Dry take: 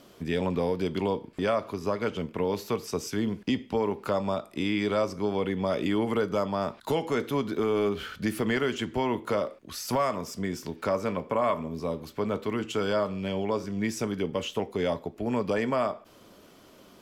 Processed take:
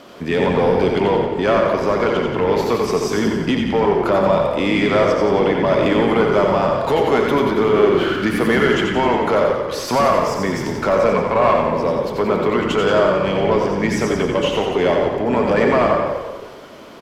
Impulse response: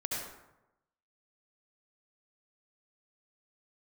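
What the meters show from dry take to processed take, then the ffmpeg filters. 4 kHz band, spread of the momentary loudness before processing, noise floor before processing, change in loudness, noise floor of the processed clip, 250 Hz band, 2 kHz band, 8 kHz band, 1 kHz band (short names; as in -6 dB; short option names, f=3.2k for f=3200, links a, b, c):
+11.0 dB, 5 LU, -54 dBFS, +12.0 dB, -31 dBFS, +10.5 dB, +13.5 dB, +7.5 dB, +13.5 dB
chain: -filter_complex "[0:a]asplit=2[a][b];[b]highpass=f=720:p=1,volume=13dB,asoftclip=type=tanh:threshold=-17.5dB[c];[a][c]amix=inputs=2:normalize=0,lowpass=f=1.8k:p=1,volume=-6dB,asplit=9[d][e][f][g][h][i][j][k][l];[e]adelay=89,afreqshift=-33,volume=-5dB[m];[f]adelay=178,afreqshift=-66,volume=-9.4dB[n];[g]adelay=267,afreqshift=-99,volume=-13.9dB[o];[h]adelay=356,afreqshift=-132,volume=-18.3dB[p];[i]adelay=445,afreqshift=-165,volume=-22.7dB[q];[j]adelay=534,afreqshift=-198,volume=-27.2dB[r];[k]adelay=623,afreqshift=-231,volume=-31.6dB[s];[l]adelay=712,afreqshift=-264,volume=-36.1dB[t];[d][m][n][o][p][q][r][s][t]amix=inputs=9:normalize=0,asplit=2[u][v];[1:a]atrim=start_sample=2205,asetrate=42777,aresample=44100[w];[v][w]afir=irnorm=-1:irlink=0,volume=-5dB[x];[u][x]amix=inputs=2:normalize=0,volume=5.5dB"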